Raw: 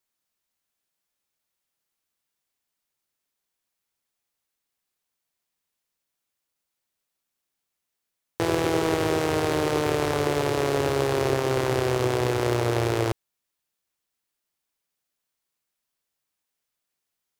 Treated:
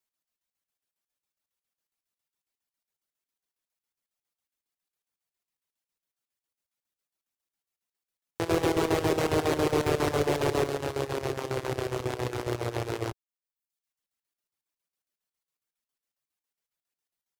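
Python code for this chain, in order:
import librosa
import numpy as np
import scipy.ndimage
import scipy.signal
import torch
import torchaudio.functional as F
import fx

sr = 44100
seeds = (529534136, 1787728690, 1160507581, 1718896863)

y = fx.dereverb_blind(x, sr, rt60_s=0.69)
y = fx.leveller(y, sr, passes=2, at=(8.5, 10.68))
y = fx.chopper(y, sr, hz=7.3, depth_pct=65, duty_pct=65)
y = F.gain(torch.from_numpy(y), -4.0).numpy()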